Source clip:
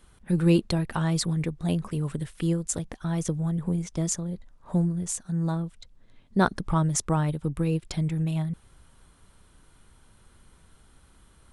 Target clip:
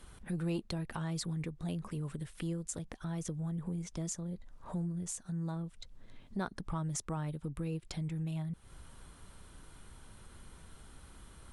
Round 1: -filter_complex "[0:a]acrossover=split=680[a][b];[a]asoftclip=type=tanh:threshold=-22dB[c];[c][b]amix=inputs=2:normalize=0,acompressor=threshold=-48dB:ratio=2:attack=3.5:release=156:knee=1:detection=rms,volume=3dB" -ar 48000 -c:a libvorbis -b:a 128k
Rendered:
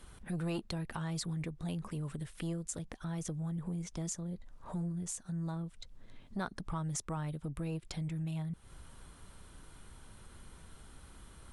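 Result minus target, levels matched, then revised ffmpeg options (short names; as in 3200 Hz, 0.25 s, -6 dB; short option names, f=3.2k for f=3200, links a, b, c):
soft clip: distortion +9 dB
-filter_complex "[0:a]acrossover=split=680[a][b];[a]asoftclip=type=tanh:threshold=-14.5dB[c];[c][b]amix=inputs=2:normalize=0,acompressor=threshold=-48dB:ratio=2:attack=3.5:release=156:knee=1:detection=rms,volume=3dB" -ar 48000 -c:a libvorbis -b:a 128k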